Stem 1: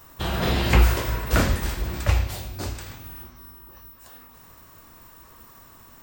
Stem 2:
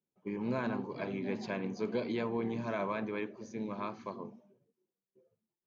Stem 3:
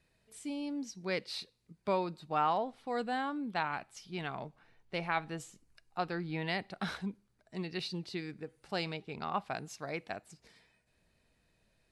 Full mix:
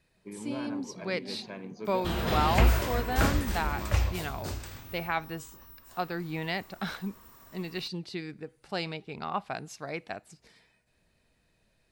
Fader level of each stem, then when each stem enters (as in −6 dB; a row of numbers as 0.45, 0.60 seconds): −5.5, −5.0, +2.5 decibels; 1.85, 0.00, 0.00 seconds